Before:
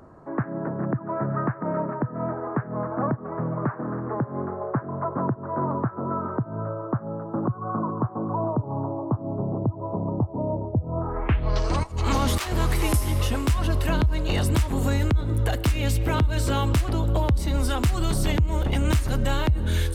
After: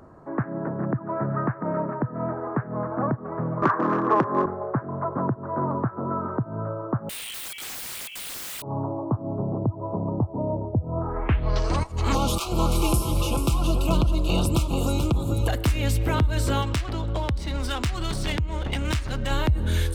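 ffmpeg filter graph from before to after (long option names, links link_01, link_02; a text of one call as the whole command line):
ffmpeg -i in.wav -filter_complex "[0:a]asettb=1/sr,asplit=3[link_01][link_02][link_03];[link_01]atrim=end=3.624[link_04];[link_02]atrim=start=3.62:end=4.46,asetpts=PTS-STARTPTS,afade=type=in:duration=0.004:curve=qsin,afade=type=out:start_time=0.836:duration=0.004:curve=qsin,acontrast=66,aeval=exprs='clip(val(0),-1,0.106)':channel_layout=same,highpass=frequency=120:width=0.5412,highpass=frequency=120:width=1.3066,equalizer=frequency=130:width_type=q:width=4:gain=-10,equalizer=frequency=230:width_type=q:width=4:gain=-4,equalizer=frequency=350:width_type=q:width=4:gain=4,equalizer=frequency=1100:width_type=q:width=4:gain=10,equalizer=frequency=1700:width_type=q:width=4:gain=5,equalizer=frequency=6000:width_type=q:width=4:gain=3,lowpass=frequency=7700:width=0.5412,lowpass=frequency=7700:width=1.3066[link_05];[link_03]atrim=start=4.456[link_06];[link_04][link_05]acrossfade=duration=0.004:curve1=hsin:curve2=qsin[link_07];[link_07][link_06]acrossfade=duration=0.004:curve1=qsin:curve2=hsin,asettb=1/sr,asplit=3[link_08][link_09][link_10];[link_08]atrim=end=7.094[link_11];[link_09]atrim=start=7.09:end=8.62,asetpts=PTS-STARTPTS,afade=type=in:duration=0.004:curve=qsin,afade=type=out:start_time=1.526:duration=0.004:curve=qsin,lowpass=frequency=2900:width_type=q:width=0.5098,lowpass=frequency=2900:width_type=q:width=0.6013,lowpass=frequency=2900:width_type=q:width=0.9,lowpass=frequency=2900:width_type=q:width=2.563,afreqshift=-3400,aeval=exprs='(mod(33.5*val(0)+1,2)-1)/33.5':channel_layout=same,acrusher=bits=7:mix=0:aa=0.5[link_12];[link_10]atrim=start=8.616[link_13];[link_11][link_12]acrossfade=duration=0.004:curve1=hsin:curve2=qsin[link_14];[link_14][link_13]acrossfade=duration=0.004:curve1=qsin:curve2=hsin,asettb=1/sr,asplit=3[link_15][link_16][link_17];[link_15]atrim=end=12.154[link_18];[link_16]atrim=start=12.15:end=15.48,asetpts=PTS-STARTPTS,afade=type=in:duration=0.004:curve=qsin,afade=type=out:start_time=3.326:duration=0.004:curve=qsin,asuperstop=centerf=1800:order=8:qfactor=1.8,aecho=1:1:5.9:0.42,atrim=end_sample=146853,aecho=1:1:435:0.422,atrim=end_sample=146853[link_19];[link_17]atrim=start=15.476[link_20];[link_18][link_19]acrossfade=duration=0.004:curve1=hsin:curve2=qsin[link_21];[link_21][link_20]acrossfade=duration=0.004:curve1=qsin:curve2=hsin,asettb=1/sr,asplit=3[link_22][link_23][link_24];[link_22]atrim=end=16.624[link_25];[link_23]atrim=start=16.62:end=19.31,asetpts=PTS-STARTPTS,afade=type=in:duration=0.004:curve=qsin,afade=type=out:start_time=2.686:duration=0.004:curve=qsin,adynamicsmooth=sensitivity=6:basefreq=3000,tiltshelf=frequency=1500:gain=-5[link_26];[link_24]atrim=start=19.306[link_27];[link_25][link_26]acrossfade=duration=0.004:curve1=hsin:curve2=qsin[link_28];[link_28][link_27]acrossfade=duration=0.004:curve1=qsin:curve2=hsin" out.wav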